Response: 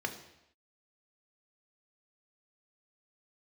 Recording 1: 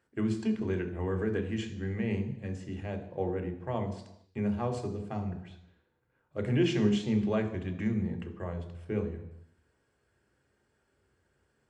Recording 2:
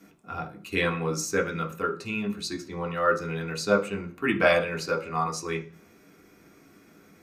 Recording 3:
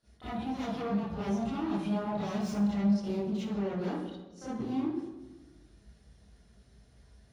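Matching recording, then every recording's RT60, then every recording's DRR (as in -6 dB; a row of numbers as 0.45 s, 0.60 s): 1; no single decay rate, 0.40 s, 1.2 s; 4.5 dB, 1.0 dB, -13.0 dB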